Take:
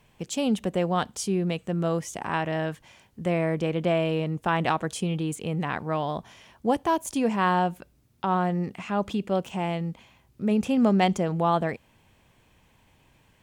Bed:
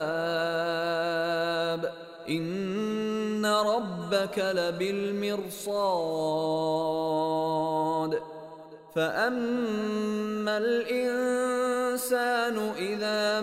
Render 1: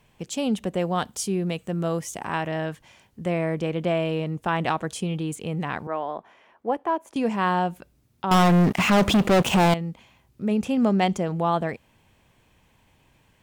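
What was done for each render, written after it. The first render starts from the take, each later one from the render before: 0.79–2.48 high shelf 9200 Hz +8 dB; 5.87–7.16 three-band isolator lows -21 dB, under 280 Hz, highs -18 dB, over 2300 Hz; 8.31–9.74 sample leveller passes 5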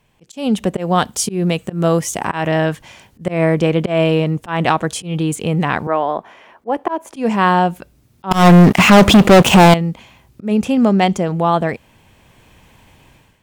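auto swell 0.148 s; AGC gain up to 13 dB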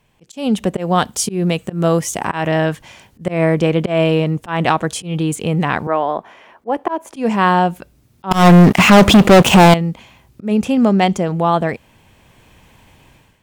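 nothing audible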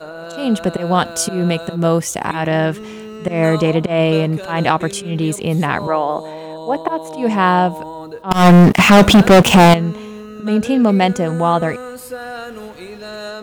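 add bed -2.5 dB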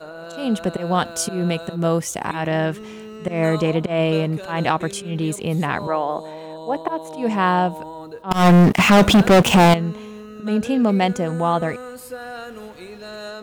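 gain -4.5 dB

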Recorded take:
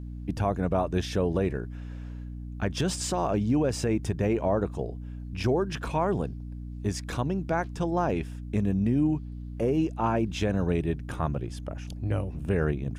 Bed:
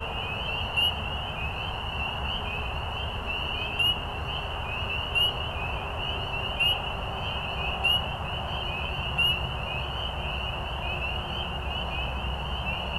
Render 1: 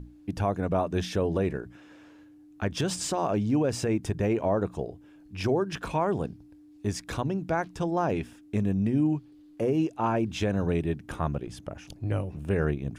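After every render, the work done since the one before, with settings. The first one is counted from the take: notches 60/120/180/240 Hz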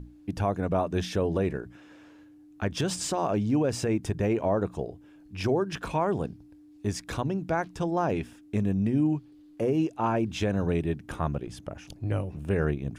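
nothing audible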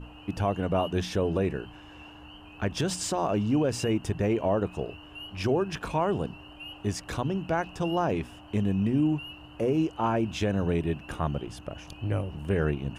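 add bed -18.5 dB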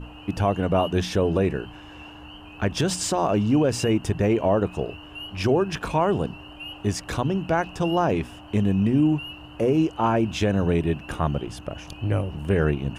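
gain +5 dB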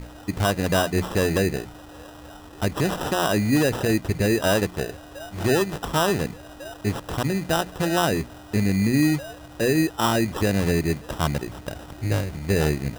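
sample-and-hold 20×

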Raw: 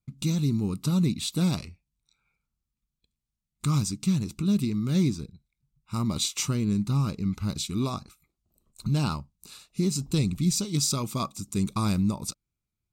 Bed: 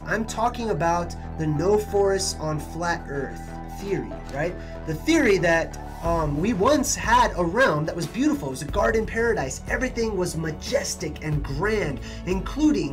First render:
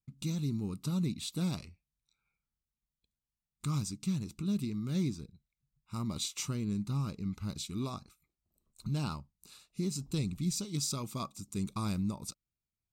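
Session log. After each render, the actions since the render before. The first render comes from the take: gain -8.5 dB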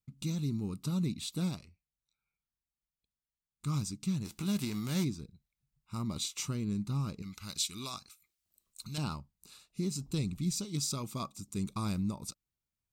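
1.41–3.67 upward expander, over -43 dBFS; 4.24–5.03 spectral whitening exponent 0.6; 7.22–8.98 tilt shelf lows -9.5 dB, about 1100 Hz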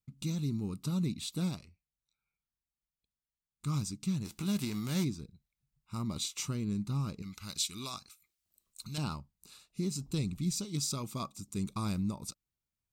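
nothing audible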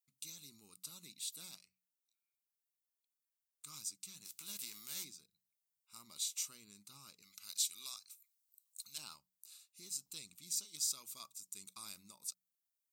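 differentiator; de-hum 61.9 Hz, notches 3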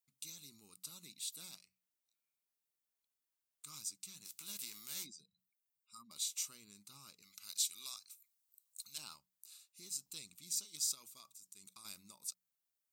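5.06–6.11 spectral contrast raised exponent 2.3; 10.94–11.85 compressor, threshold -52 dBFS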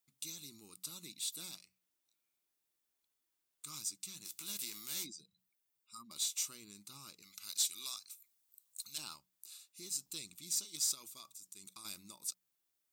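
small resonant body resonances 330/3500 Hz, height 7 dB; in parallel at -3.5 dB: soft clip -38.5 dBFS, distortion -8 dB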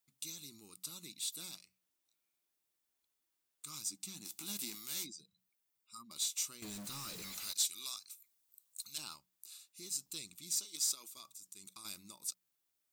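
3.85–4.75 small resonant body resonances 250/760 Hz, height 11 dB, ringing for 25 ms; 6.62–7.53 zero-crossing step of -42 dBFS; 10.57–11.17 HPF 240 Hz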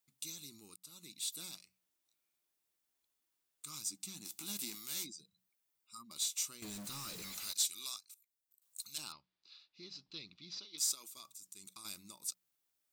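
0.76–1.23 fade in linear, from -17 dB; 7.97–8.62 level quantiser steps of 18 dB; 9.12–10.78 steep low-pass 4900 Hz 48 dB/oct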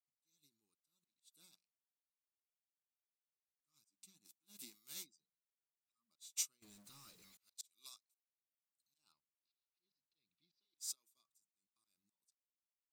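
auto swell 0.228 s; upward expander 2.5:1, over -54 dBFS

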